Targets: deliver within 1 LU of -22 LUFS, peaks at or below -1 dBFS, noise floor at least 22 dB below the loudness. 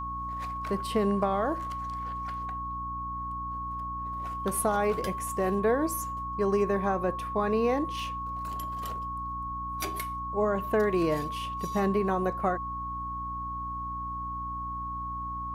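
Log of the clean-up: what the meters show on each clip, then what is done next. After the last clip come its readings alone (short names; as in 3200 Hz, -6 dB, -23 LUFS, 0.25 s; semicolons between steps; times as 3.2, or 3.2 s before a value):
hum 60 Hz; harmonics up to 300 Hz; hum level -39 dBFS; steady tone 1100 Hz; tone level -33 dBFS; loudness -30.5 LUFS; peak -13.5 dBFS; loudness target -22.0 LUFS
-> notches 60/120/180/240/300 Hz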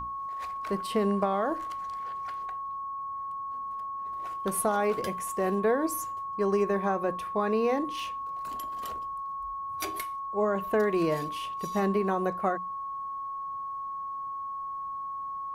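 hum none; steady tone 1100 Hz; tone level -33 dBFS
-> notch 1100 Hz, Q 30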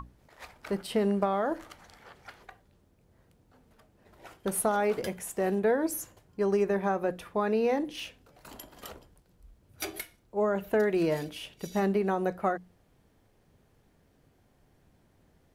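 steady tone none; loudness -30.0 LUFS; peak -14.0 dBFS; loudness target -22.0 LUFS
-> gain +8 dB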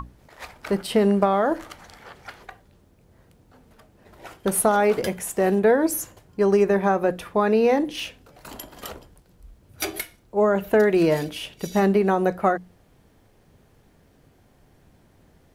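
loudness -22.0 LUFS; peak -6.0 dBFS; noise floor -58 dBFS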